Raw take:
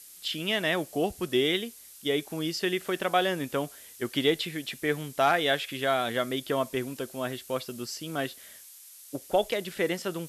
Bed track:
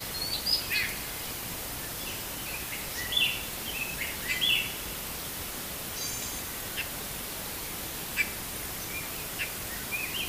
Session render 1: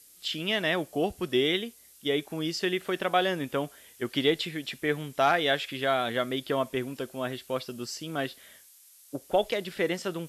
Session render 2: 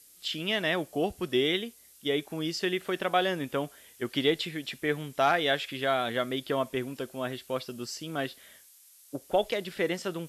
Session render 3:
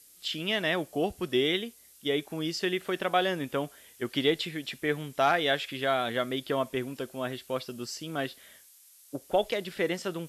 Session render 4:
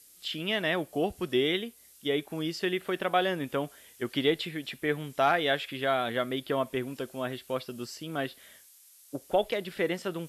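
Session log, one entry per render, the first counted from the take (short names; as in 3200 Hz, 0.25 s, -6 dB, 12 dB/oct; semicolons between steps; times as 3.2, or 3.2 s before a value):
noise print and reduce 6 dB
gain -1 dB
nothing audible
dynamic EQ 6100 Hz, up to -6 dB, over -51 dBFS, Q 1.2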